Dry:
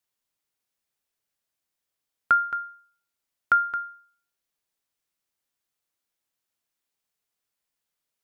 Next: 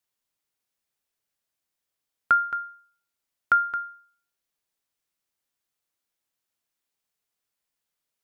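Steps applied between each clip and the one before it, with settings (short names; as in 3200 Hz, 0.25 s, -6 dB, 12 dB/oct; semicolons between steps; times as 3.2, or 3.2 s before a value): nothing audible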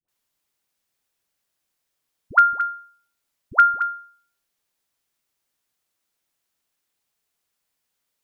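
dispersion highs, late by 85 ms, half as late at 660 Hz; gain +6 dB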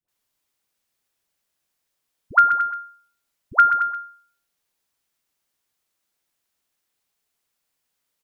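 echo 0.127 s -9 dB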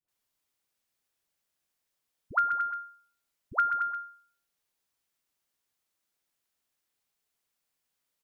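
compressor 2:1, threshold -23 dBFS, peak gain reduction 7.5 dB; gain -5 dB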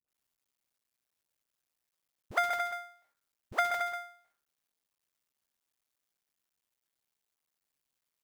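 cycle switcher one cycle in 2, muted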